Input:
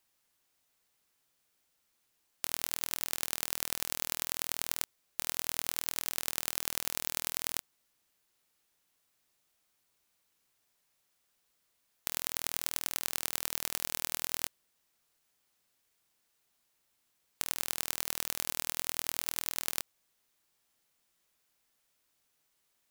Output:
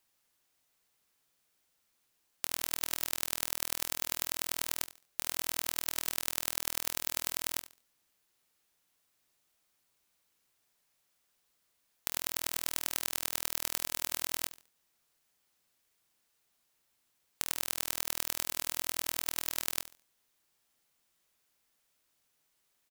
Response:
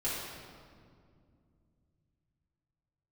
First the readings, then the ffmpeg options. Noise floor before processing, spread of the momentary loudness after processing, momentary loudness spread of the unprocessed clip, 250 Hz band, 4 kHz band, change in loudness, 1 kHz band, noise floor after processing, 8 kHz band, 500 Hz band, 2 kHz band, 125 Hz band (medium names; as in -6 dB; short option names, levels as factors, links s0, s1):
-77 dBFS, 4 LU, 3 LU, +0.5 dB, 0.0 dB, 0.0 dB, 0.0 dB, -77 dBFS, 0.0 dB, 0.0 dB, 0.0 dB, -0.5 dB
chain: -af "aecho=1:1:71|142|213:0.178|0.0445|0.0111"